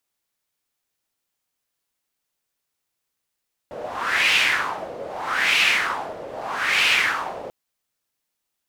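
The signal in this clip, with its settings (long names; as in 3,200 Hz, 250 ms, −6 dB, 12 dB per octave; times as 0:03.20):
wind from filtered noise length 3.79 s, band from 530 Hz, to 2,600 Hz, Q 3.5, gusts 3, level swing 16.5 dB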